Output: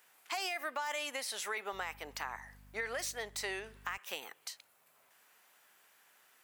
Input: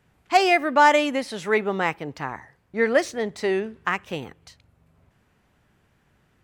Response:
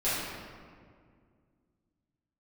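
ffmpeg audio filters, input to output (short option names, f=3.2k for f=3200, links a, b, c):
-filter_complex "[0:a]asoftclip=type=hard:threshold=-6dB,highpass=770,aemphasis=mode=production:type=50fm,alimiter=limit=-18dB:level=0:latency=1:release=49,acompressor=threshold=-41dB:ratio=2.5,asettb=1/sr,asplit=3[a][b][c];[a]atrim=end=1.734[d];[b]atrim=start=1.73:end=3.98,asetpts=PTS-STARTPTS,afade=t=in:d=0.004:c=qsin,afade=t=out:st=2.246:d=0.004:c=qsin,aeval=exprs='val(0)+0.00126*(sin(2*PI*50*n/s)+sin(2*PI*2*50*n/s)/2+sin(2*PI*3*50*n/s)/3+sin(2*PI*4*50*n/s)/4+sin(2*PI*5*50*n/s)/5)':c=same[e];[c]atrim=start=3.976[f];[d][e]acrossfade=d=0.004:c1=hsin:c2=qsin[g];[g][f]acrossfade=d=0.004:c1=qsin:c2=hsin,volume=1dB"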